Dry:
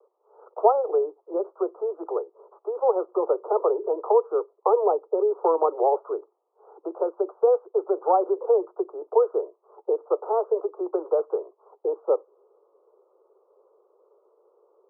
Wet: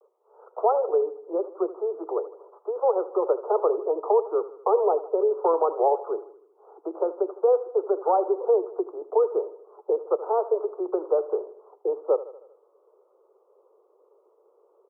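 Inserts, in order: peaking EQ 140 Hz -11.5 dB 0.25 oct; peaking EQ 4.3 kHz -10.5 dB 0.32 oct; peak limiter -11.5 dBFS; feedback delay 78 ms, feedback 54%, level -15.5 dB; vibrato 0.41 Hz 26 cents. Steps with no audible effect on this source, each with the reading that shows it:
peaking EQ 140 Hz: input has nothing below 300 Hz; peaking EQ 4.3 kHz: input has nothing above 1.3 kHz

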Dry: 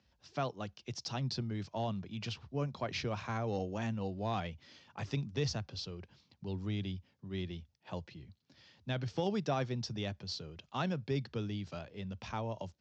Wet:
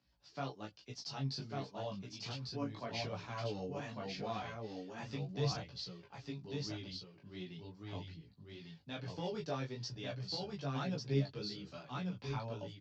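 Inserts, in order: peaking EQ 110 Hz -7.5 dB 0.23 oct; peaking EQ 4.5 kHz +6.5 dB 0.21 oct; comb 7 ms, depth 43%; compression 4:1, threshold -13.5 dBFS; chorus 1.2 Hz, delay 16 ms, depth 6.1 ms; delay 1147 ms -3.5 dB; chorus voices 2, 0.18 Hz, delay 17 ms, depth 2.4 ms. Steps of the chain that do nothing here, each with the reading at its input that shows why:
compression, threshold -13.5 dBFS: peak at its input -20.0 dBFS

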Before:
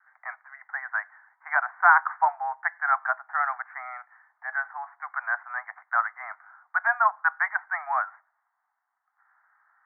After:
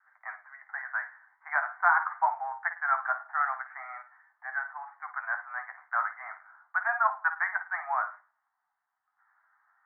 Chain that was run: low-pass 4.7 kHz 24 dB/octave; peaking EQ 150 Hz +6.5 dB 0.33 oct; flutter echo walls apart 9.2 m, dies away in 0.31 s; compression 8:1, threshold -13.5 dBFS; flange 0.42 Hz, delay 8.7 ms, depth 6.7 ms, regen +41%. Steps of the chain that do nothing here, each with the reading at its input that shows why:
low-pass 4.7 kHz: input has nothing above 2.3 kHz; peaking EQ 150 Hz: input has nothing below 570 Hz

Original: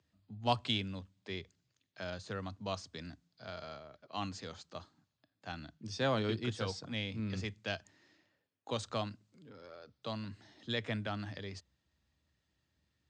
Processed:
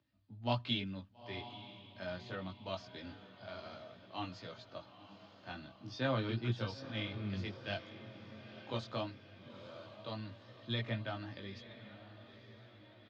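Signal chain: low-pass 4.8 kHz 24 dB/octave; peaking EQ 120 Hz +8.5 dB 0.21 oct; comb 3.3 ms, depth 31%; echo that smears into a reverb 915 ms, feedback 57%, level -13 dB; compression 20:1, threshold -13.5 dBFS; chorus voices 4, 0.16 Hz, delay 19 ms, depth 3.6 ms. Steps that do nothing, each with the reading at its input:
compression, threshold -13.5 dBFS: peak at its input -18.0 dBFS

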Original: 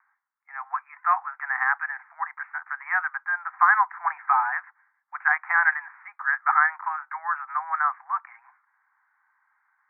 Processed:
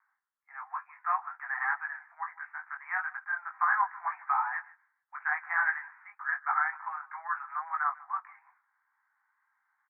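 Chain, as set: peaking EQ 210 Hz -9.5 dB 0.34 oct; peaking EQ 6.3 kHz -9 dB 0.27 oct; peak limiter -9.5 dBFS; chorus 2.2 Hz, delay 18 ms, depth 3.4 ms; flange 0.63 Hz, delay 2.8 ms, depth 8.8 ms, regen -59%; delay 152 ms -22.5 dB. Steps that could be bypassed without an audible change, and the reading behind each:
peaking EQ 210 Hz: input has nothing below 640 Hz; peaking EQ 6.3 kHz: input has nothing above 2.4 kHz

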